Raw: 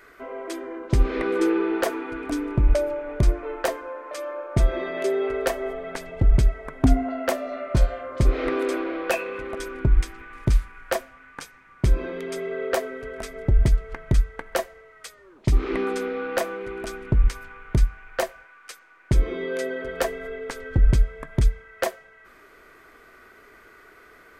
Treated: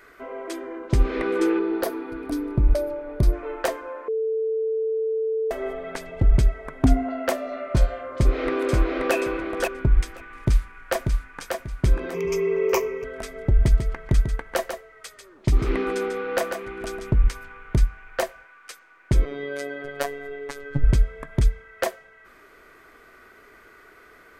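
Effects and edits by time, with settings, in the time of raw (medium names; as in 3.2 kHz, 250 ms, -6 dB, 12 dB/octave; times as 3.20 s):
1.59–3.33 s: FFT filter 330 Hz 0 dB, 2.9 kHz -8 dB, 4.4 kHz 0 dB, 7.4 kHz -8 dB, 11 kHz +4 dB
4.08–5.51 s: bleep 443 Hz -21.5 dBFS
8.09–9.14 s: echo throw 530 ms, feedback 10%, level -2 dB
10.33–11.40 s: echo throw 590 ms, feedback 30%, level -4 dB
12.14–13.04 s: rippled EQ curve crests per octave 0.78, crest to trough 17 dB
13.56–17.12 s: delay 144 ms -7.5 dB
19.25–20.84 s: robot voice 142 Hz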